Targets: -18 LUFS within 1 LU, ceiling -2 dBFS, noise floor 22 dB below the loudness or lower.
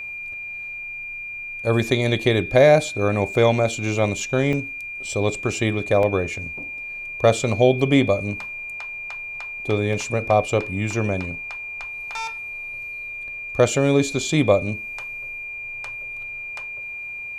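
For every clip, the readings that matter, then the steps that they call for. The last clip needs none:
dropouts 3; longest dropout 1.3 ms; steady tone 2400 Hz; tone level -30 dBFS; loudness -22.5 LUFS; peak -3.0 dBFS; loudness target -18.0 LUFS
-> interpolate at 4.53/6.03/9.93, 1.3 ms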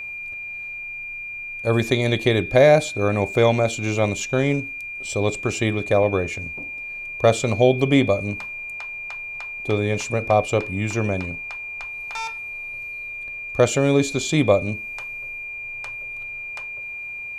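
dropouts 0; steady tone 2400 Hz; tone level -30 dBFS
-> notch 2400 Hz, Q 30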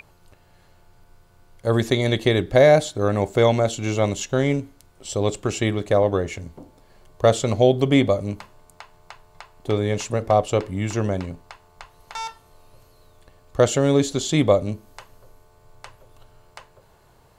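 steady tone none; loudness -21.0 LUFS; peak -3.0 dBFS; loudness target -18.0 LUFS
-> gain +3 dB; limiter -2 dBFS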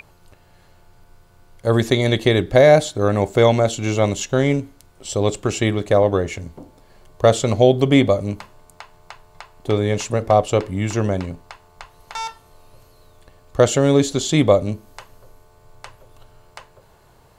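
loudness -18.0 LUFS; peak -2.0 dBFS; noise floor -52 dBFS

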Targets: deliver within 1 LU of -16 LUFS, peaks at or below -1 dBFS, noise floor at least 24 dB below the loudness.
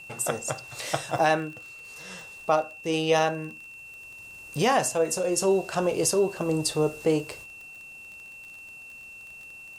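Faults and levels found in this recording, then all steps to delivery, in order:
ticks 32/s; steady tone 2700 Hz; tone level -42 dBFS; loudness -26.0 LUFS; peak -10.0 dBFS; loudness target -16.0 LUFS
-> de-click; notch 2700 Hz, Q 30; gain +10 dB; limiter -1 dBFS

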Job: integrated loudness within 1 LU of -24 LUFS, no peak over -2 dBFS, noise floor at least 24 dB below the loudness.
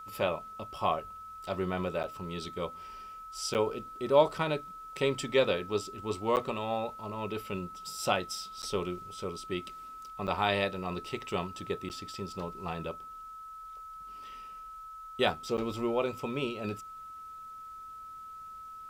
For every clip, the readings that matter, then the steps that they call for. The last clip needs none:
dropouts 7; longest dropout 9.0 ms; steady tone 1300 Hz; tone level -43 dBFS; loudness -33.0 LUFS; peak -9.5 dBFS; loudness target -24.0 LUFS
-> interpolate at 2.03/3.54/6.36/8.62/10.27/11.89/15.57, 9 ms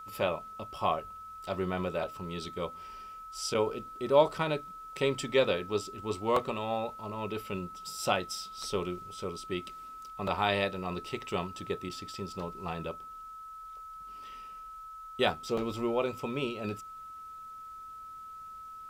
dropouts 0; steady tone 1300 Hz; tone level -43 dBFS
-> notch 1300 Hz, Q 30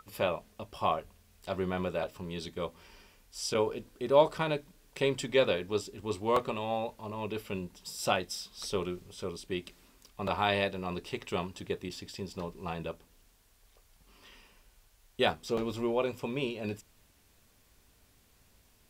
steady tone none; loudness -33.5 LUFS; peak -10.0 dBFS; loudness target -24.0 LUFS
-> gain +9.5 dB; limiter -2 dBFS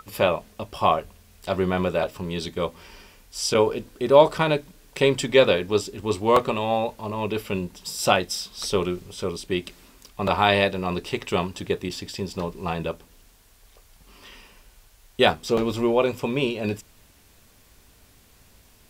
loudness -24.0 LUFS; peak -2.0 dBFS; noise floor -56 dBFS

